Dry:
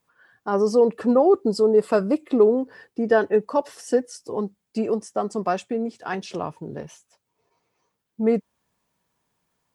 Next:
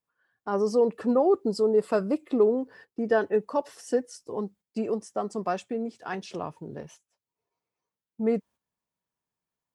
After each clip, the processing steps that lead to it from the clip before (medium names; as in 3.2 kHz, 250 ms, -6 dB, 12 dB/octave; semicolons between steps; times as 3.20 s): gate -45 dBFS, range -11 dB; trim -5 dB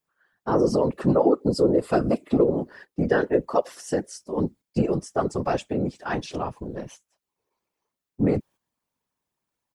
comb 5.2 ms, depth 40%; compression, threshold -20 dBFS, peak gain reduction 6 dB; whisper effect; trim +4.5 dB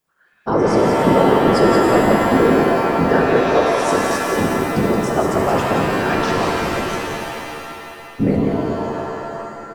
in parallel at 0 dB: compression, threshold -30 dBFS, peak gain reduction 15 dB; on the sum: delay 175 ms -6 dB; pitch-shifted reverb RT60 2.6 s, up +7 st, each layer -2 dB, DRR 0.5 dB; trim +1 dB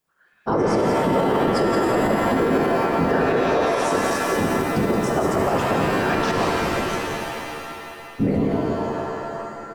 peak limiter -9 dBFS, peak gain reduction 7 dB; trim -2 dB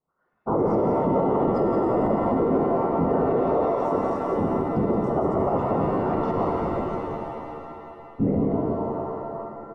Savitzky-Golay filter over 65 samples; trim -2 dB